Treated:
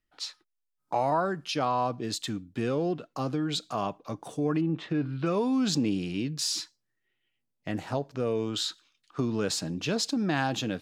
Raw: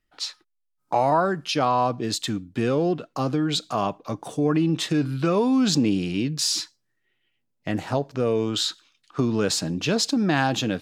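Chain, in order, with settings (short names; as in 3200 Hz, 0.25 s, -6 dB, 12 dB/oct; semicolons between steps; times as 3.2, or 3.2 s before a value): 4.6–5.25 LPF 1500 Hz -> 3800 Hz 12 dB/oct; gain -6 dB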